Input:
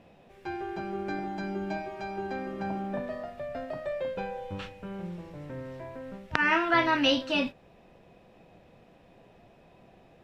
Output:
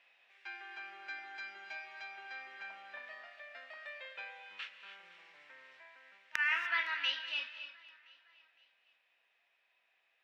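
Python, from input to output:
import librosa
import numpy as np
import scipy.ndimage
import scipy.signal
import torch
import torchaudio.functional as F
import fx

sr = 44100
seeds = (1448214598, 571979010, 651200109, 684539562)

y = fx.rider(x, sr, range_db=4, speed_s=2.0)
y = fx.ladder_bandpass(y, sr, hz=2600.0, resonance_pct=30)
y = np.clip(y, -10.0 ** (-24.0 / 20.0), 10.0 ** (-24.0 / 20.0))
y = fx.echo_feedback(y, sr, ms=511, feedback_pct=44, wet_db=-21.5)
y = fx.rev_gated(y, sr, seeds[0], gate_ms=320, shape='rising', drr_db=8.5)
y = y * 10.0 ** (6.0 / 20.0)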